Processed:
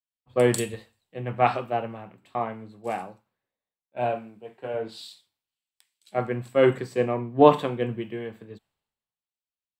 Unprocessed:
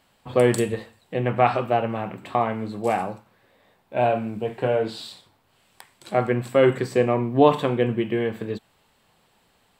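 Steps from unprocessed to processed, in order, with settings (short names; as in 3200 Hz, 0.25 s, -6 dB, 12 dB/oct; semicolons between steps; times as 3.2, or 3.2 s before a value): 4.15–4.74 low shelf 170 Hz -9.5 dB; three-band expander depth 100%; gain -6.5 dB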